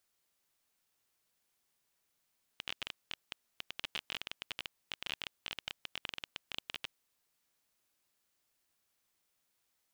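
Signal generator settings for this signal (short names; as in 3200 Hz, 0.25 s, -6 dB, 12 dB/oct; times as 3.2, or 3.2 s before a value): random clicks 18/s -21 dBFS 4.34 s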